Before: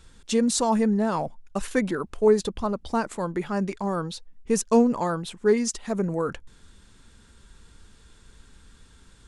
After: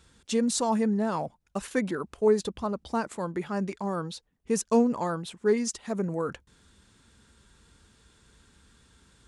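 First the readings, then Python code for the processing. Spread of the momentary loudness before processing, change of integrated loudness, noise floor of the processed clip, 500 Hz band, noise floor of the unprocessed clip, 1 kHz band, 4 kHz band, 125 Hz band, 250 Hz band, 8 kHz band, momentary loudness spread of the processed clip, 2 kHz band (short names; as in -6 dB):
9 LU, -3.5 dB, -70 dBFS, -3.5 dB, -55 dBFS, -3.5 dB, -3.5 dB, -3.5 dB, -3.5 dB, -3.5 dB, 9 LU, -3.5 dB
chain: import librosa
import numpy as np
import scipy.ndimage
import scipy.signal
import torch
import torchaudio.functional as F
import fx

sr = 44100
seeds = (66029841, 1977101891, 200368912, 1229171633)

y = scipy.signal.sosfilt(scipy.signal.butter(2, 61.0, 'highpass', fs=sr, output='sos'), x)
y = y * 10.0 ** (-3.5 / 20.0)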